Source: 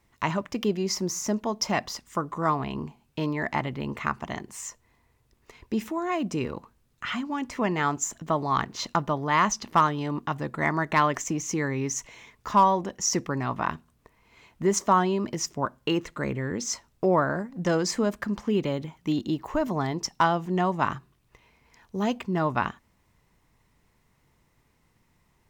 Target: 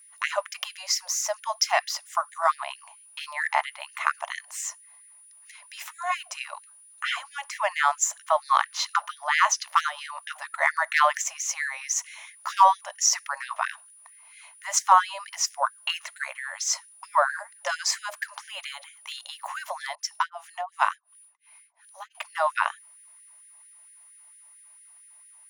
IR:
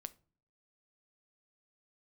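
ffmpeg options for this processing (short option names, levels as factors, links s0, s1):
-filter_complex "[0:a]aeval=exprs='val(0)+0.00178*sin(2*PI*9700*n/s)':c=same,asettb=1/sr,asplit=3[s0][s1][s2];[s0]atrim=end=19.954[s3];[s1]atrim=start=19.95:end=22.15,asetpts=PTS-STARTPTS,afade=t=in:d=0.004:c=qsin,afade=t=out:st=2.196:d=0.004:c=qsin,acrossover=split=620[s4][s5];[s4]aeval=exprs='val(0)*(1-1/2+1/2*cos(2*PI*2.8*n/s))':c=same[s6];[s5]aeval=exprs='val(0)*(1-1/2-1/2*cos(2*PI*2.8*n/s))':c=same[s7];[s6][s7]amix=inputs=2:normalize=0[s8];[s2]atrim=start=22.146[s9];[s3][s8]acrossfade=d=0.004:c1=hsin:c2=qsin[s10];[s10][s9]acrossfade=d=0.004:c1=qsin:c2=hsin,afftfilt=real='re*gte(b*sr/1024,540*pow(1600/540,0.5+0.5*sin(2*PI*4.4*pts/sr)))':imag='im*gte(b*sr/1024,540*pow(1600/540,0.5+0.5*sin(2*PI*4.4*pts/sr)))':win_size=1024:overlap=0.75,volume=1.78"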